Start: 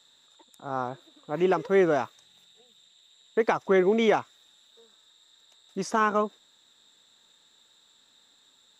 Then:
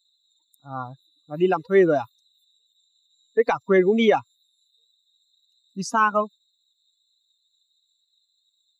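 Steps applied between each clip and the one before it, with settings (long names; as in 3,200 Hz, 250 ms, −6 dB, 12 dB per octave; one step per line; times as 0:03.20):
spectral dynamics exaggerated over time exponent 2
level +7 dB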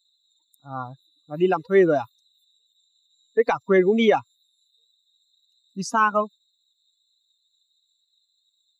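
no processing that can be heard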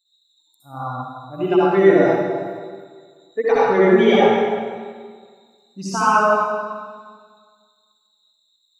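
convolution reverb RT60 1.7 s, pre-delay 58 ms, DRR −9 dB
level −4 dB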